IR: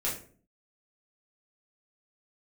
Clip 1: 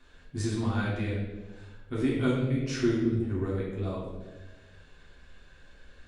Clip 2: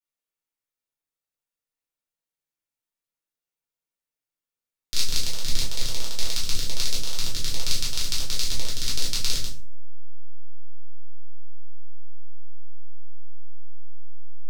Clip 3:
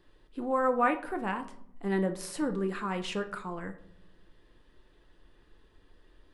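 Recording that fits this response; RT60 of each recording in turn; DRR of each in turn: 2; 1.3 s, 0.45 s, 0.70 s; -6.5 dB, -6.5 dB, 6.5 dB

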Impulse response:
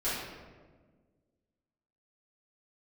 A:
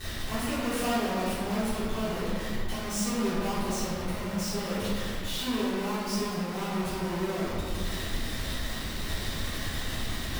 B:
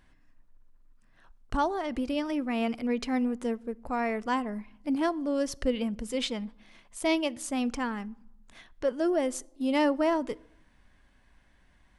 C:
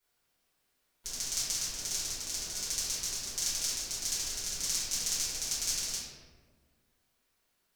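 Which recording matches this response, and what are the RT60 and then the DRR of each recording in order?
C; 2.2 s, 0.90 s, 1.5 s; -13.5 dB, 22.0 dB, -13.5 dB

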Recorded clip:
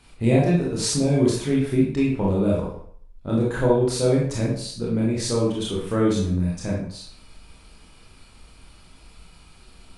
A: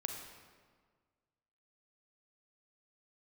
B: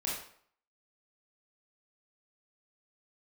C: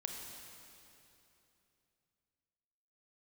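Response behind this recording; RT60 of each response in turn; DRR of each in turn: B; 1.6 s, 0.60 s, 3.0 s; 3.0 dB, -5.0 dB, 1.5 dB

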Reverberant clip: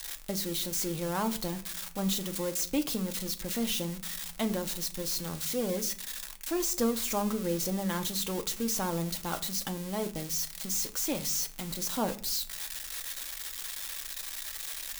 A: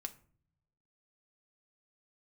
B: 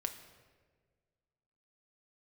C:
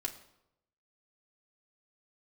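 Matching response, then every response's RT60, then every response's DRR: A; 0.50 s, 1.6 s, 0.85 s; 6.0 dB, 5.5 dB, -0.5 dB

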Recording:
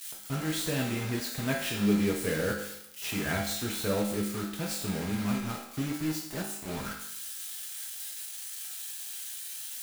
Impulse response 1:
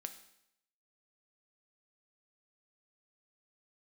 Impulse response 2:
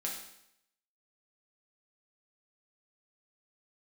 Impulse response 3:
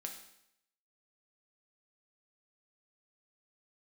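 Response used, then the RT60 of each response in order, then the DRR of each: 2; 0.75 s, 0.75 s, 0.75 s; 7.0 dB, -3.0 dB, 2.0 dB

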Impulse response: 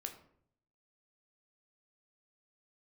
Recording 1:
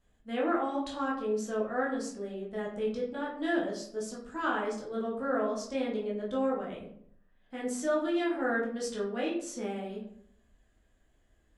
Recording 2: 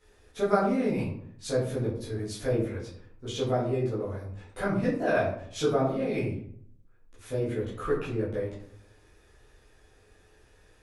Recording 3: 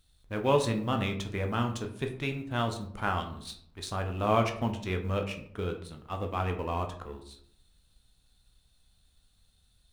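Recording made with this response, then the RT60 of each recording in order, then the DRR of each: 3; 0.65 s, 0.65 s, 0.65 s; -4.5 dB, -10.5 dB, 4.0 dB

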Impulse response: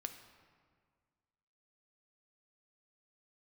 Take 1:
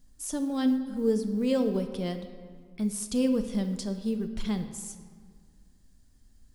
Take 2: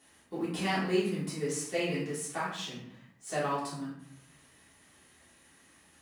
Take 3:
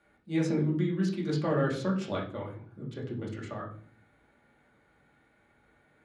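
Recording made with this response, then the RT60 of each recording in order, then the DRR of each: 1; 1.8 s, 0.65 s, 0.50 s; 6.5 dB, -9.5 dB, -3.5 dB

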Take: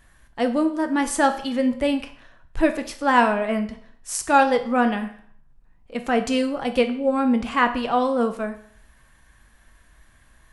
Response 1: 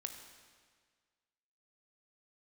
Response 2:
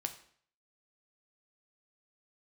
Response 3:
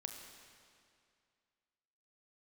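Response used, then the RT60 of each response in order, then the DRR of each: 2; 1.7 s, 0.55 s, 2.3 s; 5.0 dB, 6.5 dB, 3.5 dB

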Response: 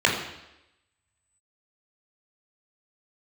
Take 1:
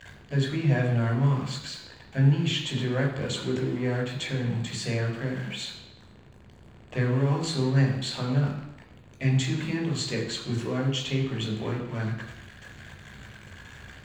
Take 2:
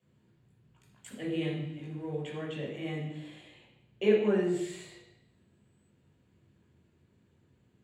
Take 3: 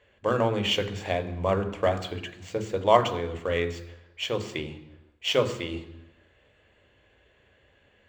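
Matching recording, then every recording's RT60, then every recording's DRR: 1; 0.90 s, 0.90 s, 0.90 s; -2.0 dB, -6.0 dB, 8.0 dB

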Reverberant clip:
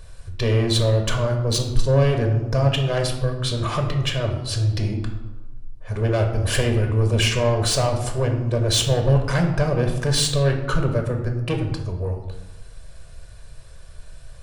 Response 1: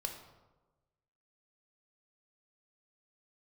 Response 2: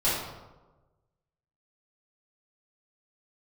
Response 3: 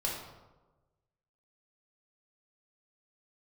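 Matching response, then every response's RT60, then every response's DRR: 1; 1.2 s, 1.2 s, 1.2 s; 2.5 dB, -11.5 dB, -4.5 dB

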